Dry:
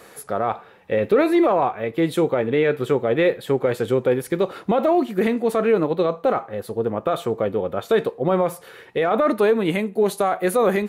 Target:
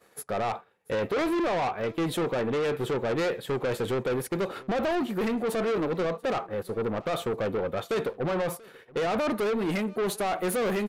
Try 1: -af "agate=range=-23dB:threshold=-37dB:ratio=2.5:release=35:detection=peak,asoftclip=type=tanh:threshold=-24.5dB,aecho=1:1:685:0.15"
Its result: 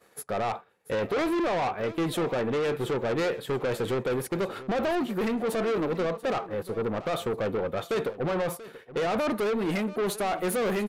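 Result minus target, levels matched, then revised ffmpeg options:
echo-to-direct +7 dB
-af "agate=range=-23dB:threshold=-37dB:ratio=2.5:release=35:detection=peak,asoftclip=type=tanh:threshold=-24.5dB,aecho=1:1:685:0.0668"

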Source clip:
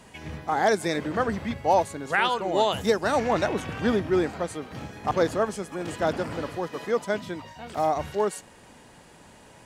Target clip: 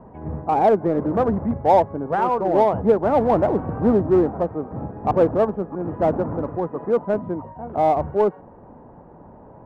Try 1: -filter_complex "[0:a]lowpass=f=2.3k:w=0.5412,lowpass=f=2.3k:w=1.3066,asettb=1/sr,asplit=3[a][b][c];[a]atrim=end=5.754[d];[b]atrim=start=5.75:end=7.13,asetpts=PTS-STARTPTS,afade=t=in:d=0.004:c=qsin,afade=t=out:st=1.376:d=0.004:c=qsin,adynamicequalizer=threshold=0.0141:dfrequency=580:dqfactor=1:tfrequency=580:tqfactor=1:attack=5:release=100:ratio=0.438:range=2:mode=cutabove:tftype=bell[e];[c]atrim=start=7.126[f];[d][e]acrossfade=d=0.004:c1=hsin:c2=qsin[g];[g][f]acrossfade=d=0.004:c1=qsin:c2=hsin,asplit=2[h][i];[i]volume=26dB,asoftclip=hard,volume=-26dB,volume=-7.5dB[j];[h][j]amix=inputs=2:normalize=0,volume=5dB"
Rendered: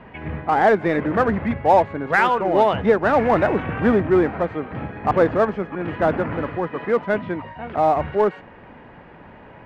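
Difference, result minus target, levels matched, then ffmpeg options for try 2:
2000 Hz band +13.0 dB
-filter_complex "[0:a]lowpass=f=1k:w=0.5412,lowpass=f=1k:w=1.3066,asettb=1/sr,asplit=3[a][b][c];[a]atrim=end=5.754[d];[b]atrim=start=5.75:end=7.13,asetpts=PTS-STARTPTS,afade=t=in:d=0.004:c=qsin,afade=t=out:st=1.376:d=0.004:c=qsin,adynamicequalizer=threshold=0.0141:dfrequency=580:dqfactor=1:tfrequency=580:tqfactor=1:attack=5:release=100:ratio=0.438:range=2:mode=cutabove:tftype=bell[e];[c]atrim=start=7.126[f];[d][e]acrossfade=d=0.004:c1=hsin:c2=qsin[g];[g][f]acrossfade=d=0.004:c1=qsin:c2=hsin,asplit=2[h][i];[i]volume=26dB,asoftclip=hard,volume=-26dB,volume=-7.5dB[j];[h][j]amix=inputs=2:normalize=0,volume=5dB"

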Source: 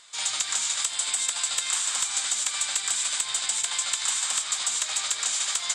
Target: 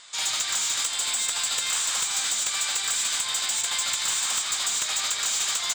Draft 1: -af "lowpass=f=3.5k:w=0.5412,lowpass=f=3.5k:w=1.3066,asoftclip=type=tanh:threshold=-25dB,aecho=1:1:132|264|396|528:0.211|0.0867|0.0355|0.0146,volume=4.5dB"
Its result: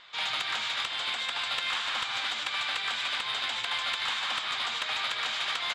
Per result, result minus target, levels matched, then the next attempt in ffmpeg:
8000 Hz band -17.0 dB; echo 46 ms late
-af "lowpass=f=8.5k:w=0.5412,lowpass=f=8.5k:w=1.3066,asoftclip=type=tanh:threshold=-25dB,aecho=1:1:132|264|396|528:0.211|0.0867|0.0355|0.0146,volume=4.5dB"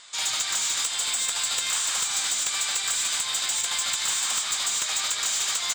echo 46 ms late
-af "lowpass=f=8.5k:w=0.5412,lowpass=f=8.5k:w=1.3066,asoftclip=type=tanh:threshold=-25dB,aecho=1:1:86|172|258|344:0.211|0.0867|0.0355|0.0146,volume=4.5dB"

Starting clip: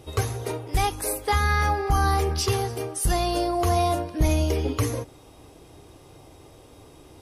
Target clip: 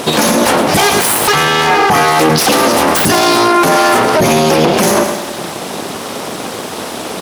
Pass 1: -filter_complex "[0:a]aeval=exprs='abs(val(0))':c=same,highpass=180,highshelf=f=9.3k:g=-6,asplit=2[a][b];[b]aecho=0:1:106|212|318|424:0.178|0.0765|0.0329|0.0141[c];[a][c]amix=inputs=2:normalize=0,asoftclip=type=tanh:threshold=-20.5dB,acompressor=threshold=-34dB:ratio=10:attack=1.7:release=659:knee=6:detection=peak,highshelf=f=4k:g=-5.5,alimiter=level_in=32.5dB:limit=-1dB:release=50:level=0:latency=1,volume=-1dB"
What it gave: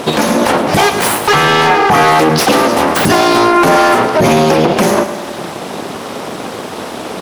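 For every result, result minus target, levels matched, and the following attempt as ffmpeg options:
compressor: peak gain reduction +11 dB; soft clip: distortion +15 dB; 8000 Hz band -5.0 dB
-filter_complex "[0:a]aeval=exprs='abs(val(0))':c=same,highpass=180,highshelf=f=9.3k:g=-6,asplit=2[a][b];[b]aecho=0:1:106|212|318|424:0.178|0.0765|0.0329|0.0141[c];[a][c]amix=inputs=2:normalize=0,asoftclip=type=tanh:threshold=-20.5dB,highshelf=f=4k:g=-5.5,alimiter=level_in=32.5dB:limit=-1dB:release=50:level=0:latency=1,volume=-1dB"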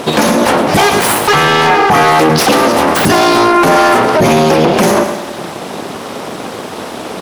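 soft clip: distortion +15 dB; 8000 Hz band -4.5 dB
-filter_complex "[0:a]aeval=exprs='abs(val(0))':c=same,highpass=180,highshelf=f=9.3k:g=-6,asplit=2[a][b];[b]aecho=0:1:106|212|318|424:0.178|0.0765|0.0329|0.0141[c];[a][c]amix=inputs=2:normalize=0,asoftclip=type=tanh:threshold=-11.5dB,highshelf=f=4k:g=-5.5,alimiter=level_in=32.5dB:limit=-1dB:release=50:level=0:latency=1,volume=-1dB"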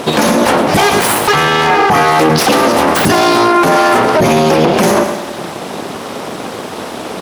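8000 Hz band -4.5 dB
-filter_complex "[0:a]aeval=exprs='abs(val(0))':c=same,highpass=180,highshelf=f=9.3k:g=-6,asplit=2[a][b];[b]aecho=0:1:106|212|318|424:0.178|0.0765|0.0329|0.0141[c];[a][c]amix=inputs=2:normalize=0,asoftclip=type=tanh:threshold=-11.5dB,highshelf=f=4k:g=2.5,alimiter=level_in=32.5dB:limit=-1dB:release=50:level=0:latency=1,volume=-1dB"

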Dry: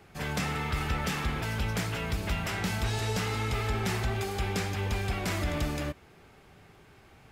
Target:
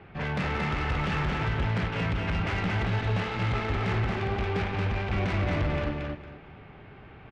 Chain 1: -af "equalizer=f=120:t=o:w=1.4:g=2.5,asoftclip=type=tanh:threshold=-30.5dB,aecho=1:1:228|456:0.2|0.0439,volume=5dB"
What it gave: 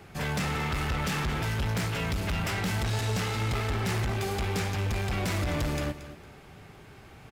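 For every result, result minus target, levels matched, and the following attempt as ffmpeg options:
echo-to-direct -11 dB; 4000 Hz band +4.0 dB
-af "equalizer=f=120:t=o:w=1.4:g=2.5,asoftclip=type=tanh:threshold=-30.5dB,aecho=1:1:228|456|684:0.708|0.156|0.0343,volume=5dB"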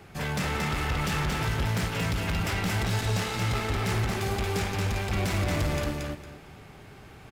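4000 Hz band +4.5 dB
-af "lowpass=f=3k:w=0.5412,lowpass=f=3k:w=1.3066,equalizer=f=120:t=o:w=1.4:g=2.5,asoftclip=type=tanh:threshold=-30.5dB,aecho=1:1:228|456|684:0.708|0.156|0.0343,volume=5dB"

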